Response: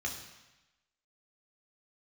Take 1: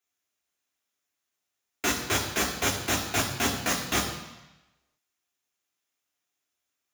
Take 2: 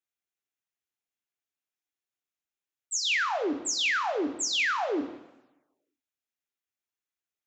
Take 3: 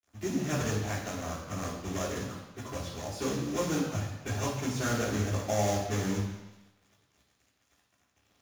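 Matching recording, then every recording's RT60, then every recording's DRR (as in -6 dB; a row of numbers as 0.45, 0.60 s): 1; 1.0, 1.0, 1.0 s; 0.0, 8.0, -9.5 dB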